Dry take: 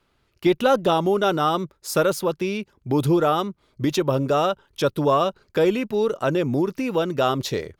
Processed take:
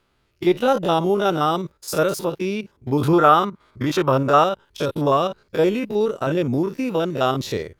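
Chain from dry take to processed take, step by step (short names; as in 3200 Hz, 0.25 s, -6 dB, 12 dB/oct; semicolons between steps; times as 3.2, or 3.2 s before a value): stepped spectrum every 50 ms; 3.01–4.44 bell 1300 Hz +10.5 dB 1.5 oct; gain +2 dB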